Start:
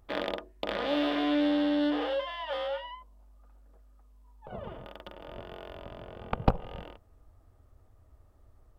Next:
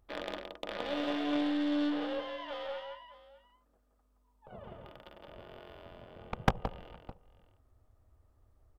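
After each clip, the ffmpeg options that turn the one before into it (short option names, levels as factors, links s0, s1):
-af "aecho=1:1:171|611:0.596|0.141,aeval=exprs='0.376*(cos(1*acos(clip(val(0)/0.376,-1,1)))-cos(1*PI/2))+0.075*(cos(3*acos(clip(val(0)/0.376,-1,1)))-cos(3*PI/2))+0.133*(cos(4*acos(clip(val(0)/0.376,-1,1)))-cos(4*PI/2))+0.075*(cos(6*acos(clip(val(0)/0.376,-1,1)))-cos(6*PI/2))':c=same"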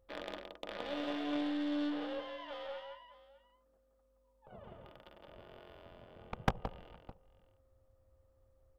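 -af "aeval=exprs='val(0)+0.000398*sin(2*PI*530*n/s)':c=same,volume=0.596"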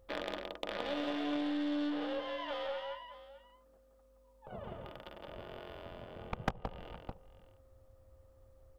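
-af "acompressor=threshold=0.00708:ratio=2.5,volume=2.37"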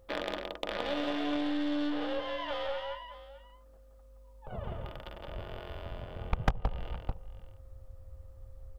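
-af "asubboost=boost=3.5:cutoff=120,volume=1.58"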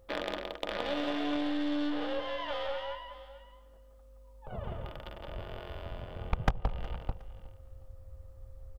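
-af "aecho=1:1:364|728:0.1|0.029"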